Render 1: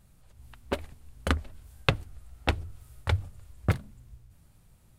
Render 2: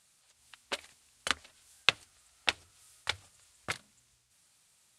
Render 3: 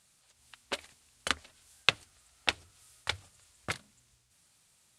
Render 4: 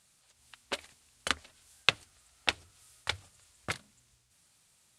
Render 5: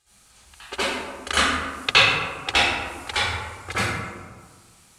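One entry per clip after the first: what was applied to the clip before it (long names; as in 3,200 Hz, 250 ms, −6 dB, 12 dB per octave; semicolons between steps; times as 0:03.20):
meter weighting curve ITU-R 468; level −5 dB
low-shelf EQ 430 Hz +5 dB
no processing that can be heard
convolution reverb RT60 1.6 s, pre-delay 63 ms, DRR −15.5 dB; level −5 dB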